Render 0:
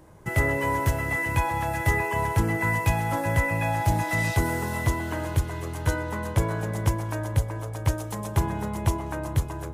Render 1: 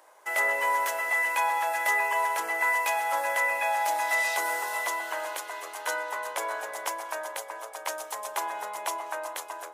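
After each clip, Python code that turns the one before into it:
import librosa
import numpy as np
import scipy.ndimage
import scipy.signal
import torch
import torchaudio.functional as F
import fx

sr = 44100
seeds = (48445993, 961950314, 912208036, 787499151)

y = scipy.signal.sosfilt(scipy.signal.butter(4, 610.0, 'highpass', fs=sr, output='sos'), x)
y = y * librosa.db_to_amplitude(2.0)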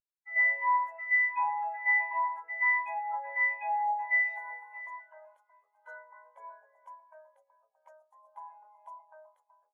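y = fx.spectral_expand(x, sr, expansion=2.5)
y = y * librosa.db_to_amplitude(-4.0)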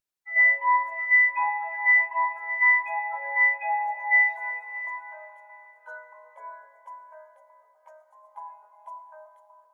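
y = fx.rev_plate(x, sr, seeds[0], rt60_s=4.0, hf_ratio=0.9, predelay_ms=0, drr_db=9.0)
y = y * librosa.db_to_amplitude(5.5)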